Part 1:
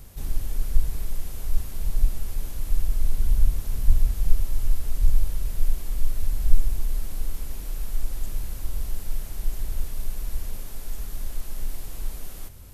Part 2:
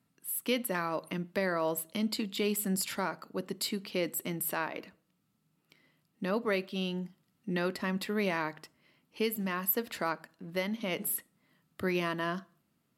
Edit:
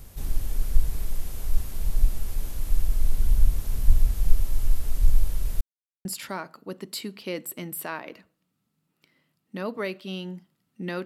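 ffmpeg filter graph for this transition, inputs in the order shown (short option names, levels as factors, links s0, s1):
-filter_complex "[0:a]apad=whole_dur=11.05,atrim=end=11.05,asplit=2[s0][s1];[s0]atrim=end=5.61,asetpts=PTS-STARTPTS,afade=t=out:st=5.606:d=0.004:c=hsin[s2];[s1]atrim=start=5.61:end=6.05,asetpts=PTS-STARTPTS,volume=0[s3];[1:a]atrim=start=2.73:end=7.73,asetpts=PTS-STARTPTS,afade=t=in:d=0.004:c=hsin[s4];[s2][s3][s4]concat=n=3:v=0:a=1"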